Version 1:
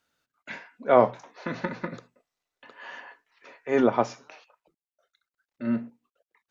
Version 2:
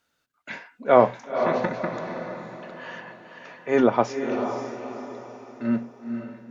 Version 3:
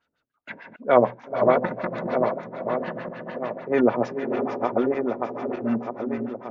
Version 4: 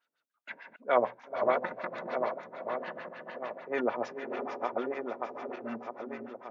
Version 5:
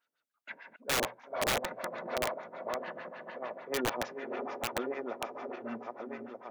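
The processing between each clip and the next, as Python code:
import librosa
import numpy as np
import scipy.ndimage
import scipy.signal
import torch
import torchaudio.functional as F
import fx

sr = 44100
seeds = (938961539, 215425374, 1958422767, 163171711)

y1 = fx.echo_diffused(x, sr, ms=508, feedback_pct=42, wet_db=-6.5)
y1 = y1 * librosa.db_to_amplitude(2.5)
y2 = fx.reverse_delay_fb(y1, sr, ms=618, feedback_pct=62, wet_db=-3.5)
y2 = fx.filter_lfo_lowpass(y2, sr, shape='sine', hz=6.7, low_hz=350.0, high_hz=4200.0, q=1.2)
y2 = y2 * librosa.db_to_amplitude(-1.5)
y3 = fx.highpass(y2, sr, hz=860.0, slope=6)
y3 = y3 * librosa.db_to_amplitude(-4.0)
y4 = fx.echo_feedback(y3, sr, ms=911, feedback_pct=37, wet_db=-22.5)
y4 = (np.mod(10.0 ** (21.5 / 20.0) * y4 + 1.0, 2.0) - 1.0) / 10.0 ** (21.5 / 20.0)
y4 = y4 * librosa.db_to_amplitude(-1.5)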